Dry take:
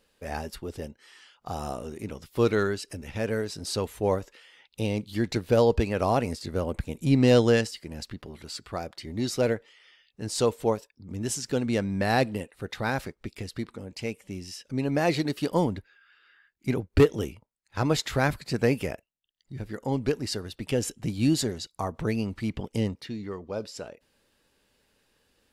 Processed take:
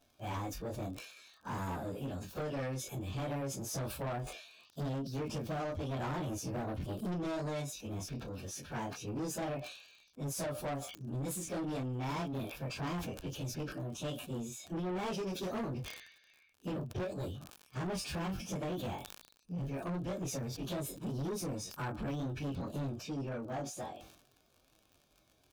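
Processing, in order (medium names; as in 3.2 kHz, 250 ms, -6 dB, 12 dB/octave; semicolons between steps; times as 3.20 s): frequency-domain pitch shifter +4.5 st; tone controls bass +6 dB, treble -4 dB; compression 6:1, threshold -28 dBFS, peak gain reduction 14 dB; doubling 22 ms -4 dB; crackle 65 per s -50 dBFS; Butterworth band-stop 2 kHz, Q 5.5; bass shelf 80 Hz -6 dB; saturation -34 dBFS, distortion -8 dB; decay stretcher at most 71 dB/s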